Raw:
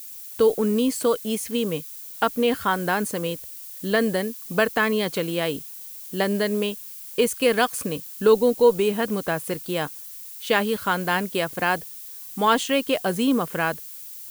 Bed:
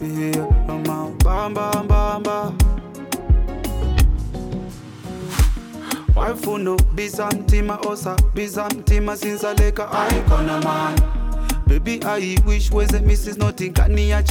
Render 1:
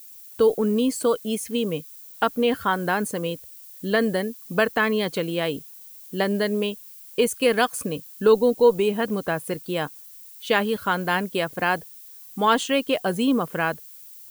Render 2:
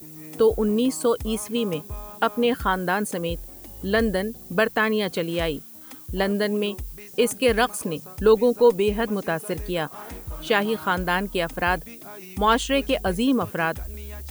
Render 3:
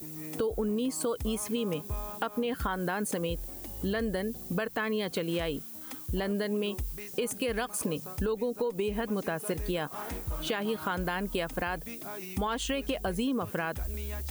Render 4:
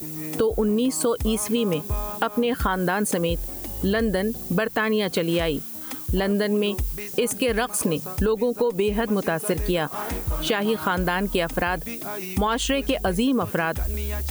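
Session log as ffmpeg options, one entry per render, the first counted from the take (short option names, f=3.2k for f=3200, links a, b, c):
-af "afftdn=nr=7:nf=-39"
-filter_complex "[1:a]volume=-20.5dB[a];[0:a][a]amix=inputs=2:normalize=0"
-af "alimiter=limit=-17dB:level=0:latency=1:release=176,acompressor=threshold=-27dB:ratio=6"
-af "volume=8.5dB"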